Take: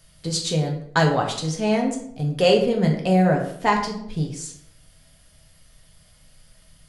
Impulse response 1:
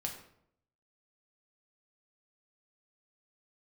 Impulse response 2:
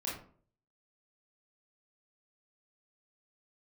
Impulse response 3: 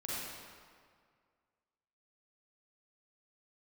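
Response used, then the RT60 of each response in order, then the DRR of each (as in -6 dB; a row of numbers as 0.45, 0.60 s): 1; 0.70, 0.50, 2.0 s; 0.5, -6.0, -8.0 dB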